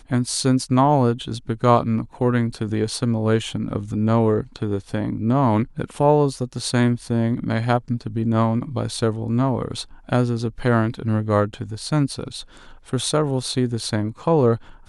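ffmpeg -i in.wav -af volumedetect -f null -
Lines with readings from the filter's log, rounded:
mean_volume: -21.0 dB
max_volume: -3.2 dB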